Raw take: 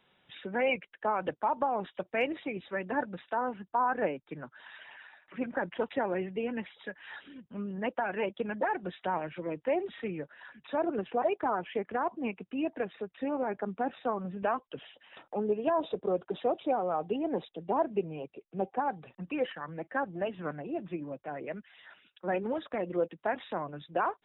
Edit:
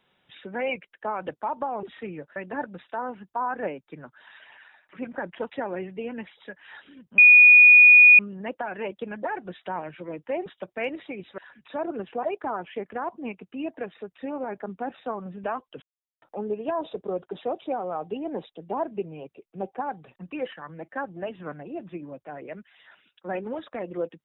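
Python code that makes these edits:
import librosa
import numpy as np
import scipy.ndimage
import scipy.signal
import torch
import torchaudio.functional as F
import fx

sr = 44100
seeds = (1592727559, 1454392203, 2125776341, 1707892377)

y = fx.edit(x, sr, fx.swap(start_s=1.83, length_s=0.92, other_s=9.84, other_length_s=0.53),
    fx.insert_tone(at_s=7.57, length_s=1.01, hz=2460.0, db=-8.5),
    fx.silence(start_s=14.81, length_s=0.4), tone=tone)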